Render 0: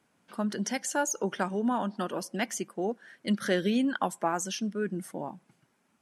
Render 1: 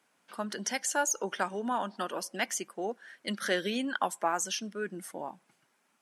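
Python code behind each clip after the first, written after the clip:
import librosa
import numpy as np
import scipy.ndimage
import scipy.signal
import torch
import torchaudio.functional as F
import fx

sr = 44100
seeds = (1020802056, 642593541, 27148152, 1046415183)

y = fx.highpass(x, sr, hz=690.0, slope=6)
y = y * librosa.db_to_amplitude(2.0)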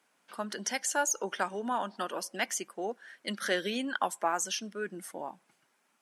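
y = fx.low_shelf(x, sr, hz=130.0, db=-8.5)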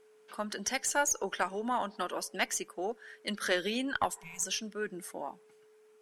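y = fx.cheby_harmonics(x, sr, harmonics=(2,), levels_db=(-16,), full_scale_db=-14.5)
y = y + 10.0 ** (-59.0 / 20.0) * np.sin(2.0 * np.pi * 430.0 * np.arange(len(y)) / sr)
y = fx.spec_repair(y, sr, seeds[0], start_s=4.18, length_s=0.23, low_hz=210.0, high_hz=2100.0, source='before')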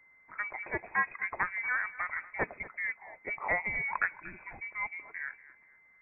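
y = fx.block_float(x, sr, bits=5)
y = fx.echo_feedback(y, sr, ms=236, feedback_pct=32, wet_db=-18)
y = fx.freq_invert(y, sr, carrier_hz=2500)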